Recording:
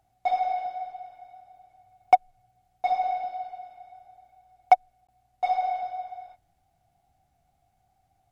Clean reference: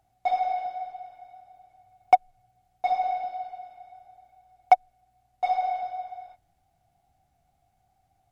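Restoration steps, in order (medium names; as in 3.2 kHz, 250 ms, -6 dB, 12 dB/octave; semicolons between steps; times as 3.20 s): interpolate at 5.07 s, 16 ms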